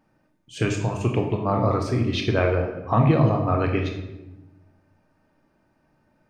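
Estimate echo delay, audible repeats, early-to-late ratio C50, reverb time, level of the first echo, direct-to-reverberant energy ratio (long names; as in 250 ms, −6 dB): no echo audible, no echo audible, 6.0 dB, 1.0 s, no echo audible, 2.0 dB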